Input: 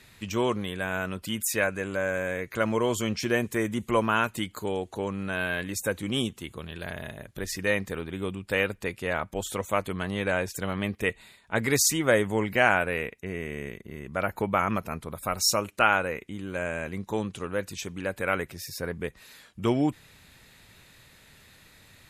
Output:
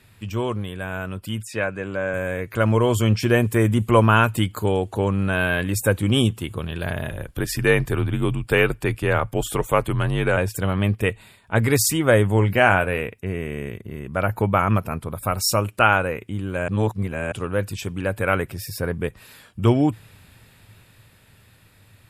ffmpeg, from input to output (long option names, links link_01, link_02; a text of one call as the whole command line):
ffmpeg -i in.wav -filter_complex "[0:a]asettb=1/sr,asplit=3[link_01][link_02][link_03];[link_01]atrim=end=1.414[link_04];[link_02]atrim=start=1.41:end=2.14,asetpts=PTS-STARTPTS,afade=type=in:duration=0.004:curve=qsin,afade=type=out:start_time=0.726:duration=0.004:curve=qsin,highpass=120,lowpass=5800[link_05];[link_03]atrim=start=2.136[link_06];[link_04][link_05]acrossfade=duration=0.004:curve1=hsin:curve2=qsin[link_07];[link_07][link_06]acrossfade=duration=0.004:curve1=qsin:curve2=hsin,asplit=3[link_08][link_09][link_10];[link_08]afade=type=out:start_time=7.09:duration=0.02[link_11];[link_09]afreqshift=-61,afade=type=in:start_time=7.09:duration=0.02,afade=type=out:start_time=10.36:duration=0.02[link_12];[link_10]afade=type=in:start_time=10.36:duration=0.02[link_13];[link_11][link_12][link_13]amix=inputs=3:normalize=0,asettb=1/sr,asplit=3[link_14][link_15][link_16];[link_14]atrim=end=12.344[link_17];[link_15]atrim=start=12.34:end=13.01,asetpts=PTS-STARTPTS,afade=type=in:duration=0.004:curve=qsin,afade=type=out:start_time=0.666:duration=0.004:curve=qsin,asplit=2[link_18][link_19];[link_19]adelay=21,volume=-12.5dB[link_20];[link_18][link_20]amix=inputs=2:normalize=0,atrim=end_sample=29547[link_21];[link_16]atrim=start=13.006[link_22];[link_17][link_21]acrossfade=duration=0.004:curve1=hsin:curve2=qsin[link_23];[link_23][link_22]acrossfade=duration=0.004:curve1=qsin:curve2=hsin,asplit=3[link_24][link_25][link_26];[link_24]atrim=end=16.682[link_27];[link_25]atrim=start=16.678:end=17.322,asetpts=PTS-STARTPTS,areverse[link_28];[link_26]atrim=start=17.318[link_29];[link_27][link_28]acrossfade=duration=0.004:curve1=hsin:curve2=hsin[link_30];[link_30][link_29]acrossfade=duration=0.004:curve1=hsin:curve2=hsin,equalizer=frequency=110:width=2.6:gain=13.5,dynaudnorm=framelen=240:gausssize=21:maxgain=11.5dB,equalizer=frequency=125:width_type=o:width=0.33:gain=-5,equalizer=frequency=2000:width_type=o:width=0.33:gain=-5,equalizer=frequency=4000:width_type=o:width=0.33:gain=-6,equalizer=frequency=6300:width_type=o:width=0.33:gain=-9" out.wav